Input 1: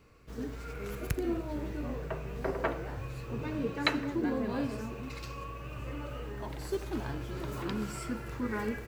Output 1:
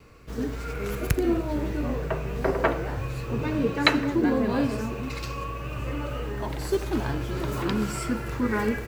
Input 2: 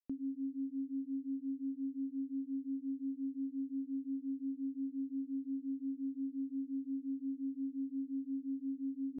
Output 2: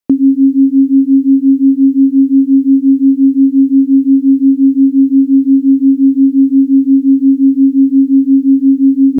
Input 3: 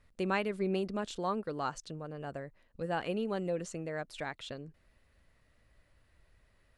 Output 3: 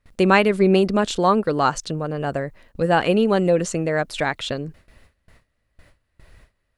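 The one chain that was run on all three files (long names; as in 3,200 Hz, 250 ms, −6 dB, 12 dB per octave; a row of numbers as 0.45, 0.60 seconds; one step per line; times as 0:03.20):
noise gate with hold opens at −56 dBFS
normalise the peak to −2 dBFS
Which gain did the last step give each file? +8.5, +31.5, +16.5 decibels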